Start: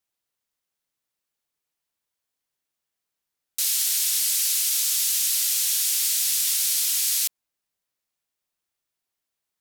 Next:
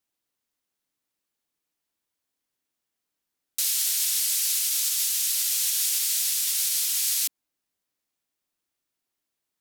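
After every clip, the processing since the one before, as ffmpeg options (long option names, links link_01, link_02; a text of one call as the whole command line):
ffmpeg -i in.wav -af "equalizer=frequency=280:width=1.9:gain=7,alimiter=limit=-14.5dB:level=0:latency=1:release=116" out.wav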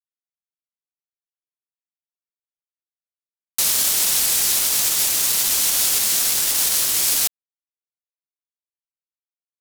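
ffmpeg -i in.wav -af "acrusher=bits=3:mix=0:aa=0.5,volume=6dB" out.wav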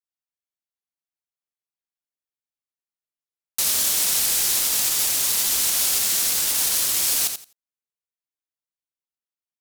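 ffmpeg -i in.wav -af "aecho=1:1:85|170|255:0.422|0.0759|0.0137,volume=-3dB" out.wav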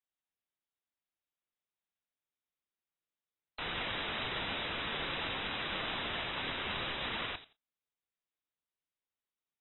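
ffmpeg -i in.wav -af "aeval=exprs='(mod(16.8*val(0)+1,2)-1)/16.8':channel_layout=same" -ar 24000 -c:a aac -b:a 16k out.aac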